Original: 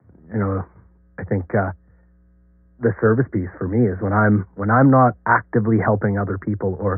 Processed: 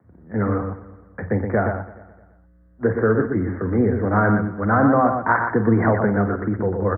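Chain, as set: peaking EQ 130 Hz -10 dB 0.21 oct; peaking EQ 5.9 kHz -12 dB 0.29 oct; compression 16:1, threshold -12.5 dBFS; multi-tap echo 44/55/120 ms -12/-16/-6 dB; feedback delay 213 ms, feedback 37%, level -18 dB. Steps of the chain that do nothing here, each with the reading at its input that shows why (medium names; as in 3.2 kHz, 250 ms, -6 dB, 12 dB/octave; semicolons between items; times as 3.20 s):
peaking EQ 5.9 kHz: input has nothing above 1.8 kHz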